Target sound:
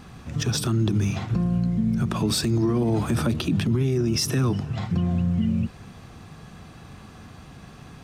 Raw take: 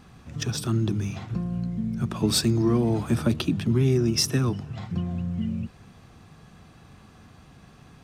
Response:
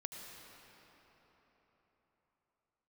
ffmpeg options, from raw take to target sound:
-af "alimiter=limit=-21.5dB:level=0:latency=1:release=46,volume=6.5dB"

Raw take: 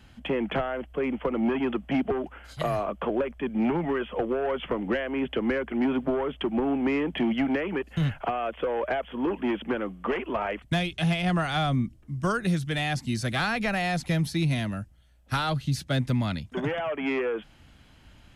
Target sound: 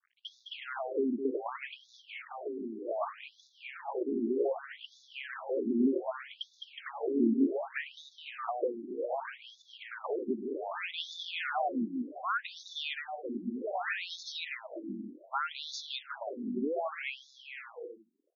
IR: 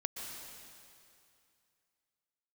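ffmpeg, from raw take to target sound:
-af "aeval=exprs='sgn(val(0))*max(abs(val(0))-0.00376,0)':channel_layout=same,aecho=1:1:210|367.5|485.6|574.2|640.7:0.631|0.398|0.251|0.158|0.1,afftfilt=real='re*between(b*sr/1024,270*pow(4900/270,0.5+0.5*sin(2*PI*0.65*pts/sr))/1.41,270*pow(4900/270,0.5+0.5*sin(2*PI*0.65*pts/sr))*1.41)':imag='im*between(b*sr/1024,270*pow(4900/270,0.5+0.5*sin(2*PI*0.65*pts/sr))/1.41,270*pow(4900/270,0.5+0.5*sin(2*PI*0.65*pts/sr))*1.41)':win_size=1024:overlap=0.75,volume=-1.5dB"

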